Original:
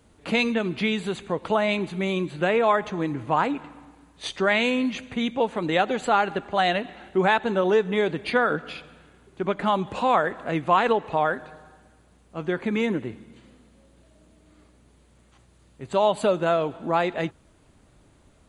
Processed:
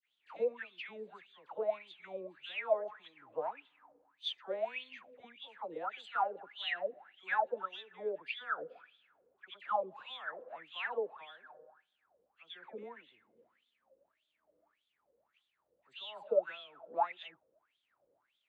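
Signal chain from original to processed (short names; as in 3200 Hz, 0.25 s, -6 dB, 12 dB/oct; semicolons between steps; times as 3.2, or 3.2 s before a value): dispersion lows, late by 80 ms, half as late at 1400 Hz; wah 1.7 Hz 480–3500 Hz, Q 14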